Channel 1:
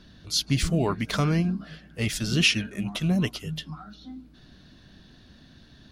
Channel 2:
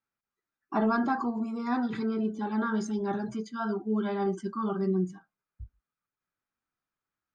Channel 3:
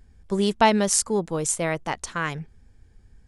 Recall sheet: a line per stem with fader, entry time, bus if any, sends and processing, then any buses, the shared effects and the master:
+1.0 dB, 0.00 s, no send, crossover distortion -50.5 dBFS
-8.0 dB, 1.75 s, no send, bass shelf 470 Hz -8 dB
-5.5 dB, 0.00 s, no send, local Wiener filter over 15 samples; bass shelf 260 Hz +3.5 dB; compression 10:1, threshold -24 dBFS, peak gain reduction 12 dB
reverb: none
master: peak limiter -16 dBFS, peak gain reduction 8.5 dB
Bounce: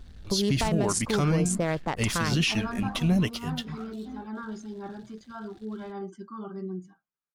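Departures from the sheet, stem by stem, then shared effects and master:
stem 2: missing bass shelf 470 Hz -8 dB; stem 3 -5.5 dB -> +3.0 dB

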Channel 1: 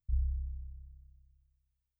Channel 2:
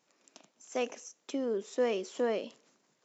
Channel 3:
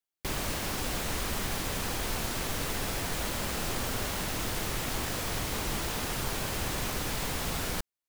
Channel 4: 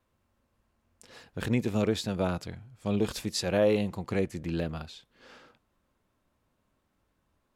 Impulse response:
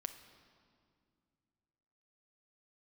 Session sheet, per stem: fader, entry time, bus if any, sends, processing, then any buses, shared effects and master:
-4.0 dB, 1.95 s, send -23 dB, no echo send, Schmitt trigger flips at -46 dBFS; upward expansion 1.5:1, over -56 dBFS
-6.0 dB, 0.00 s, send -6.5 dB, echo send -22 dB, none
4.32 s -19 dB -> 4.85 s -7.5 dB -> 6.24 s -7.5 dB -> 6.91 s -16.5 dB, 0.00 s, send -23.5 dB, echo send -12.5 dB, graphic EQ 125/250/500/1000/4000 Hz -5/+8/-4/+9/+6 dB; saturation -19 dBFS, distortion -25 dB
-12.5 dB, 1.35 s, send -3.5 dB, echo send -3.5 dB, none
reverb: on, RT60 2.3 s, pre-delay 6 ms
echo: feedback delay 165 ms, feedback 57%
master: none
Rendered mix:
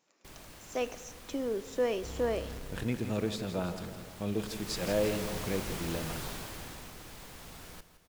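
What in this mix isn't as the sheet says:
stem 3: missing graphic EQ 125/250/500/1000/4000 Hz -5/+8/-4/+9/+6 dB; reverb return +8.0 dB

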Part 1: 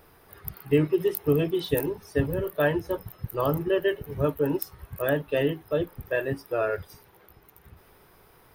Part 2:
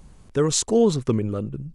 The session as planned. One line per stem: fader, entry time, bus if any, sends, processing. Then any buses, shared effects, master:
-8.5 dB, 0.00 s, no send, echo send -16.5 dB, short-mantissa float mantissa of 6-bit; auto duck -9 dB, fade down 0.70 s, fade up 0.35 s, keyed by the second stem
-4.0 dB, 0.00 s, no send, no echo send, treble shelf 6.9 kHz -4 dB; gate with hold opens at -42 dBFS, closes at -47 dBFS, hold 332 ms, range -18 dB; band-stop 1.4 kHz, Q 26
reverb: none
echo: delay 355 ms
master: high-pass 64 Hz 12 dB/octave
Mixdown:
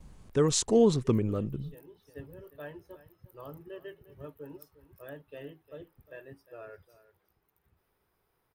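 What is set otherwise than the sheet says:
stem 1 -8.5 dB -> -20.0 dB; master: missing high-pass 64 Hz 12 dB/octave

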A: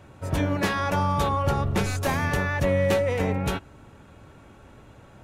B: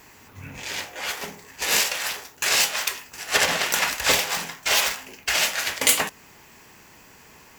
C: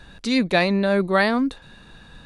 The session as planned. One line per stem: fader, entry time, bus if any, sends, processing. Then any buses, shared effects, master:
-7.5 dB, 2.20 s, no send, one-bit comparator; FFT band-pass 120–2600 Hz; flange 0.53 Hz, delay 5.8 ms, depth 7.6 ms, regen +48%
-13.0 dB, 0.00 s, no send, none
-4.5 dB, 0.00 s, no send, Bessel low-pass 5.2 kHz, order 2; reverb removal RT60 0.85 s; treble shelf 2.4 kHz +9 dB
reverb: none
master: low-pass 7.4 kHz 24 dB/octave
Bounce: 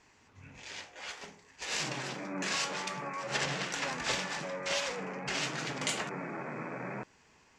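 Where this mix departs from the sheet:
stem A: entry 2.20 s -> 1.80 s; stem C: muted

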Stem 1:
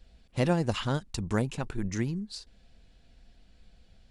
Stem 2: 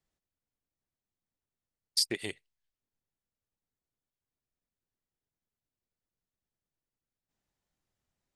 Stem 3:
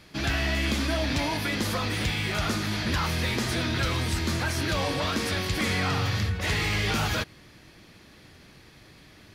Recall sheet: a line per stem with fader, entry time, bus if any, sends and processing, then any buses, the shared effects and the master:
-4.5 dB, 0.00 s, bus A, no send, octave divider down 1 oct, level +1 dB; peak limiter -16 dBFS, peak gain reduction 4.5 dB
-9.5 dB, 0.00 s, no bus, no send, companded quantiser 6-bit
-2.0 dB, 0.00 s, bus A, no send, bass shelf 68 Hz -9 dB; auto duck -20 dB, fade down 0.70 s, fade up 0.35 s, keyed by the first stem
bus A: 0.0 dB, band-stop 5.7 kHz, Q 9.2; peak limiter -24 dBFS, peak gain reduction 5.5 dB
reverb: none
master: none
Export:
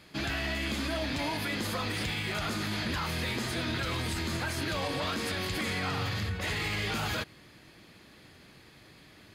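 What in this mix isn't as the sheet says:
stem 1: muted; stem 2 -9.5 dB -> -18.5 dB

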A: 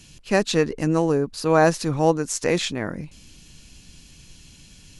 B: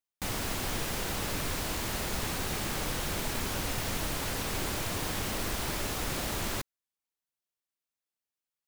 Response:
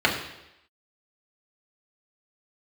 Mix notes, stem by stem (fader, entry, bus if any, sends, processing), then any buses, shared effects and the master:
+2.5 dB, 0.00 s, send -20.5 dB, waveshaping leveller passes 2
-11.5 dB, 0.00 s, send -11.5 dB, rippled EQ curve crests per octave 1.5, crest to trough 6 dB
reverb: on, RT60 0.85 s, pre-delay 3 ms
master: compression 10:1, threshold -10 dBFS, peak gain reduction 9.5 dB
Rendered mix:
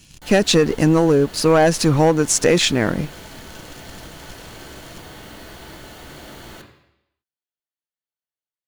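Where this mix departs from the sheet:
stem A: send off; stem B: missing rippled EQ curve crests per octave 1.5, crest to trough 6 dB

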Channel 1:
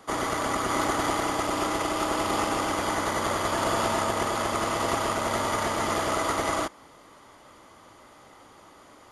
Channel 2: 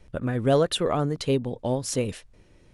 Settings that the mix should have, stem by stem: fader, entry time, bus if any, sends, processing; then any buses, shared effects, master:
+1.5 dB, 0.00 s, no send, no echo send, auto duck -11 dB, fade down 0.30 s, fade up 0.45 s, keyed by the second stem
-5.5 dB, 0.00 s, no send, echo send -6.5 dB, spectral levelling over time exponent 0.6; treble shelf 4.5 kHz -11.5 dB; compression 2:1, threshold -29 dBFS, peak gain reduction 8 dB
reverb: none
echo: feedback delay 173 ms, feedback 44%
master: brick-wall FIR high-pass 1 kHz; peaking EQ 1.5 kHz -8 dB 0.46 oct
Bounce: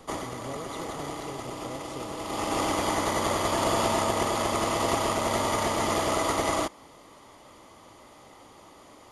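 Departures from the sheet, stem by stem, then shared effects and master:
stem 2 -5.5 dB -> -13.0 dB; master: missing brick-wall FIR high-pass 1 kHz

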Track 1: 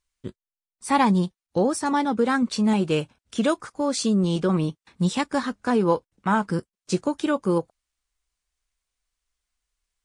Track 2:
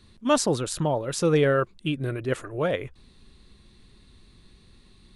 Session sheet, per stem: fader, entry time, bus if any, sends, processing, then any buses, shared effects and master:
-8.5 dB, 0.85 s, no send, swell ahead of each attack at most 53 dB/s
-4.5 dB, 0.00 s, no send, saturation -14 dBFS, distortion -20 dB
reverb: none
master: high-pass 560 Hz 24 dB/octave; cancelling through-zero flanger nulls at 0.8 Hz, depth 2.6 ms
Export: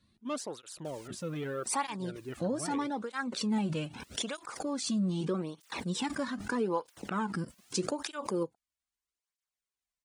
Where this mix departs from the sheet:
stem 2 -4.5 dB -> -11.0 dB; master: missing high-pass 560 Hz 24 dB/octave

